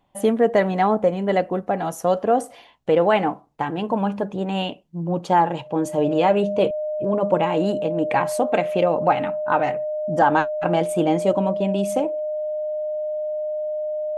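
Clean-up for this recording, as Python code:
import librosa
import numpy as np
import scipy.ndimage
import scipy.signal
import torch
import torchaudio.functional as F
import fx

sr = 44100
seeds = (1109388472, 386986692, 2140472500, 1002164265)

y = fx.notch(x, sr, hz=610.0, q=30.0)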